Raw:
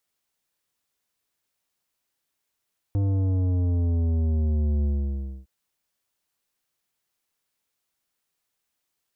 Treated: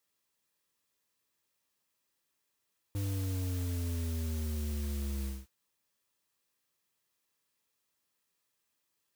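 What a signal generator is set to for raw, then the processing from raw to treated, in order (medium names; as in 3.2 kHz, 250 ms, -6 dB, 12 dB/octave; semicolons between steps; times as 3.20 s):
sub drop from 100 Hz, over 2.51 s, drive 11 dB, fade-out 0.62 s, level -21.5 dB
peak limiter -31 dBFS; comb of notches 730 Hz; modulation noise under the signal 14 dB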